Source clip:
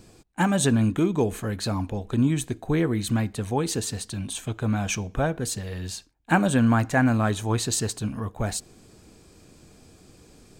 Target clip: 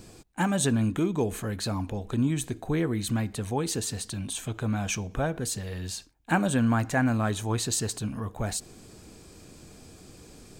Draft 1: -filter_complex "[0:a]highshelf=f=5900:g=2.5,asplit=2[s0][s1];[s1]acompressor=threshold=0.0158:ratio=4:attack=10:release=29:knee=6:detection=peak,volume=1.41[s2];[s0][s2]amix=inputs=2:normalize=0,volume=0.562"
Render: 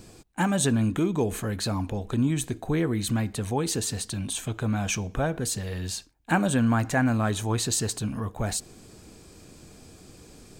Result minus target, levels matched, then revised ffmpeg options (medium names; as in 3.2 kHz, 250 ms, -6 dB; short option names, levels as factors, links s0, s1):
compression: peak gain reduction -7.5 dB
-filter_complex "[0:a]highshelf=f=5900:g=2.5,asplit=2[s0][s1];[s1]acompressor=threshold=0.00501:ratio=4:attack=10:release=29:knee=6:detection=peak,volume=1.41[s2];[s0][s2]amix=inputs=2:normalize=0,volume=0.562"